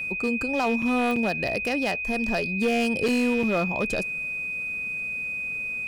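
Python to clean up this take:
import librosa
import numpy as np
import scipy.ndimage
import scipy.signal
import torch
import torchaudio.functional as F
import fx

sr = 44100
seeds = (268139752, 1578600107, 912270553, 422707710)

y = fx.fix_declip(x, sr, threshold_db=-18.0)
y = fx.fix_declick_ar(y, sr, threshold=10.0)
y = fx.notch(y, sr, hz=2500.0, q=30.0)
y = fx.fix_interpolate(y, sr, at_s=(0.82, 1.16, 1.48, 3.08, 3.43), length_ms=4.6)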